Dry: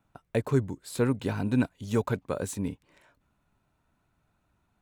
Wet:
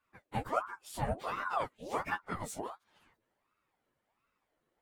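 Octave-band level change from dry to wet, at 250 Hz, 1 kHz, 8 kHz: -17.0, +5.0, -7.0 dB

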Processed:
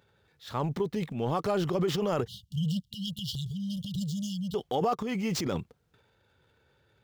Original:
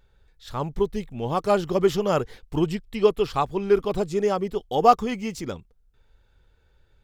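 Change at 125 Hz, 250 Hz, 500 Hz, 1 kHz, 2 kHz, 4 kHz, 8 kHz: 0.0, -3.5, -10.0, -11.0, -7.0, 0.0, -0.5 dB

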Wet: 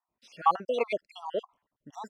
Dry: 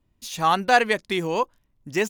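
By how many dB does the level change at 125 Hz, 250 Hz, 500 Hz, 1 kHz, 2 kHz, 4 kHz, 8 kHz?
under -15 dB, -15.5 dB, -7.0 dB, -7.5 dB, -18.5 dB, -15.5 dB, under -20 dB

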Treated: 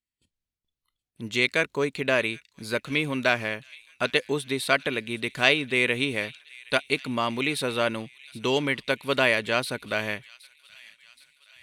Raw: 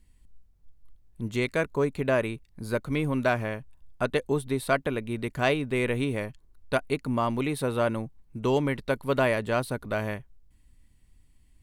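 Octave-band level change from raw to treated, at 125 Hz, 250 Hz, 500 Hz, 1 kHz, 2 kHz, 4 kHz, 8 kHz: -5.5, -1.5, -0.5, +0.5, +7.5, +11.5, +5.0 dB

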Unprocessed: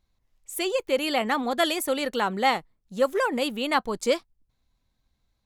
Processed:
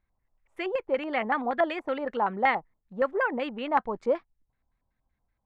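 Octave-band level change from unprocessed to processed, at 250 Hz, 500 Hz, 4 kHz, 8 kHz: -4.5 dB, -2.5 dB, -14.0 dB, under -30 dB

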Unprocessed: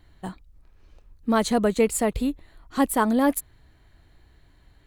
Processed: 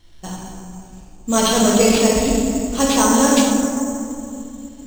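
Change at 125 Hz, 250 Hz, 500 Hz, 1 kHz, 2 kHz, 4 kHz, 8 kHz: +8.5, +8.0, +7.0, +6.5, +7.0, +15.5, +14.5 dB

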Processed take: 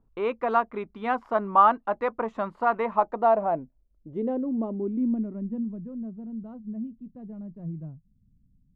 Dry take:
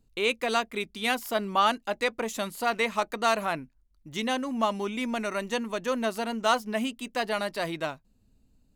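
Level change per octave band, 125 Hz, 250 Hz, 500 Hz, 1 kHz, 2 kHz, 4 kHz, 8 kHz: +4.0 dB, +2.5 dB, +1.0 dB, +3.5 dB, -7.5 dB, under -20 dB, under -35 dB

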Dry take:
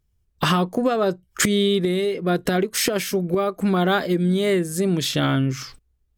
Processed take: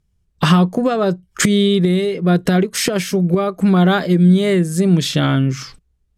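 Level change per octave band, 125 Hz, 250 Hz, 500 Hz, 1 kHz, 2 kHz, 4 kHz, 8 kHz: +9.0, +7.5, +3.0, +3.0, +3.0, +3.0, +2.5 dB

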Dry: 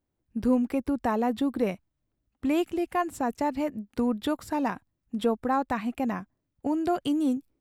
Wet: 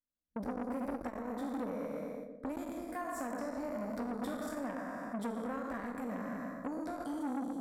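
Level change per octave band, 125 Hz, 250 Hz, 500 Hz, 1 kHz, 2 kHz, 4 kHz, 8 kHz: -8.0, -11.0, -10.0, -11.0, -8.0, -15.5, -6.5 dB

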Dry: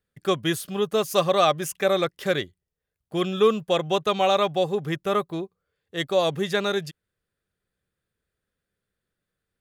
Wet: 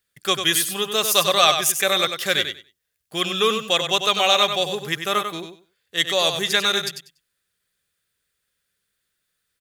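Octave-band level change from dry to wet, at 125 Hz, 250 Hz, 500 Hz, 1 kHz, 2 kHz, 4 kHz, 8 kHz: -4.5, -3.5, -2.0, +2.5, +8.0, +11.5, +13.5 dB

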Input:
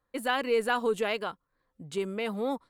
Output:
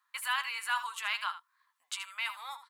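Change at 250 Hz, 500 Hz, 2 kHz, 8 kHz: under -40 dB, -35.0 dB, 0.0 dB, +4.0 dB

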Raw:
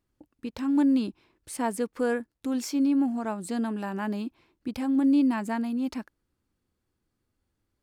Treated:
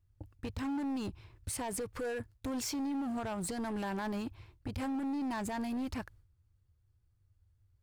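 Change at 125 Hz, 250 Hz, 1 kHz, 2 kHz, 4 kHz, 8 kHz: n/a, -11.0 dB, -5.5 dB, -5.5 dB, -2.5 dB, 0.0 dB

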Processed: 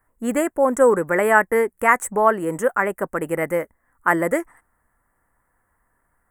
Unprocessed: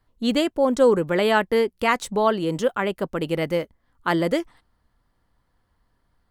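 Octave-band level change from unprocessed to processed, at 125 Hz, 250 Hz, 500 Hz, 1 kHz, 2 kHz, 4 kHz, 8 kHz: -3.5 dB, -1.0 dB, +1.5 dB, +5.0 dB, +6.0 dB, under -15 dB, +7.0 dB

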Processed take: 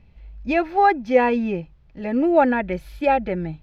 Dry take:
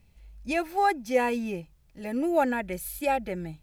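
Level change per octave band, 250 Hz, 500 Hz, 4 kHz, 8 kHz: +8.0 dB, +8.0 dB, +2.0 dB, under -15 dB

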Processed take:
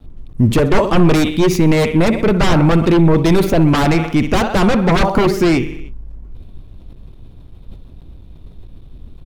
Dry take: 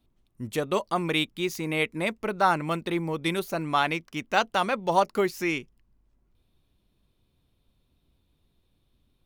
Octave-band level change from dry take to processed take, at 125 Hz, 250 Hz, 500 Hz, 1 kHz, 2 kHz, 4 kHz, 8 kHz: +21.5, +18.0, +13.0, +6.5, +7.5, +8.0, +11.5 dB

